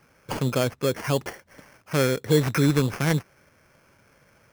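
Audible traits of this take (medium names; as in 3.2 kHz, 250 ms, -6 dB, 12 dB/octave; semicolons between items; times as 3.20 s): aliases and images of a low sample rate 3.8 kHz, jitter 0%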